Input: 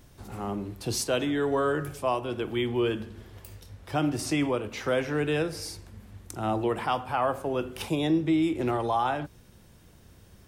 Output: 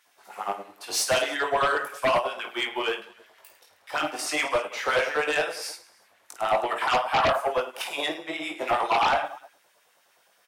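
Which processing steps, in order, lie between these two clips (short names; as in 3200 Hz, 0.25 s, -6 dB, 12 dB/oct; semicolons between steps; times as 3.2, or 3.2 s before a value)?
LFO high-pass sine 9.6 Hz 610–2200 Hz; reverse bouncing-ball echo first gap 20 ms, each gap 1.6×, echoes 5; in parallel at -10 dB: sine folder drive 17 dB, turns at -3.5 dBFS; on the sum: upward expander 1.5:1, over -35 dBFS; gain -7 dB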